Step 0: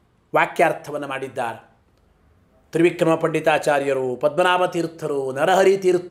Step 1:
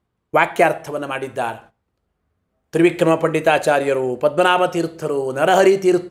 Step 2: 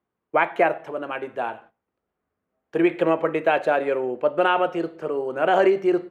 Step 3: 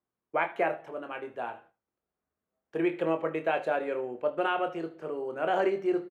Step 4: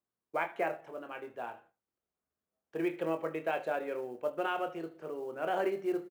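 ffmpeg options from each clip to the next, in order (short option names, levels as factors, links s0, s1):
-af "agate=range=0.158:threshold=0.00562:ratio=16:detection=peak,volume=1.33"
-filter_complex "[0:a]acrossover=split=200 3200:gain=0.2 1 0.0891[s0][s1][s2];[s0][s1][s2]amix=inputs=3:normalize=0,volume=0.596"
-af "aecho=1:1:25|76:0.398|0.126,volume=0.355"
-af "acrusher=bits=8:mode=log:mix=0:aa=0.000001,volume=0.562"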